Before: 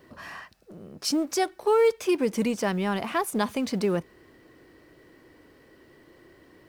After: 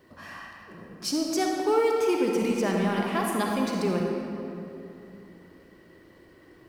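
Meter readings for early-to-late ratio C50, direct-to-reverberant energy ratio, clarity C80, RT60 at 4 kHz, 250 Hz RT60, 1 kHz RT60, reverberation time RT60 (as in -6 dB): 0.5 dB, -0.5 dB, 1.5 dB, 1.7 s, 3.3 s, 2.7 s, 2.9 s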